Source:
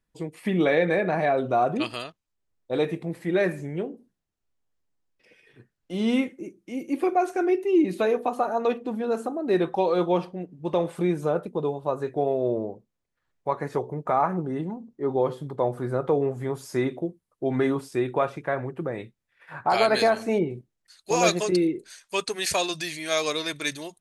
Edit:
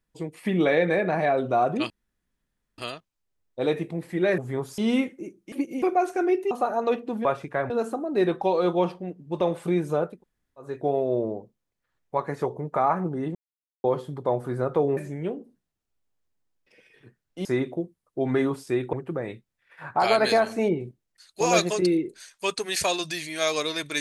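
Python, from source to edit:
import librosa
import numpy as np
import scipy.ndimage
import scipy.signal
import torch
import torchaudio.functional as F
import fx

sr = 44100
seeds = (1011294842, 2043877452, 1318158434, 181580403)

y = fx.edit(x, sr, fx.insert_room_tone(at_s=1.9, length_s=0.88),
    fx.swap(start_s=3.5, length_s=2.48, other_s=16.3, other_length_s=0.4),
    fx.reverse_span(start_s=6.72, length_s=0.3),
    fx.cut(start_s=7.71, length_s=0.58),
    fx.room_tone_fill(start_s=11.45, length_s=0.56, crossfade_s=0.24),
    fx.silence(start_s=14.68, length_s=0.49),
    fx.move(start_s=18.18, length_s=0.45, to_s=9.03), tone=tone)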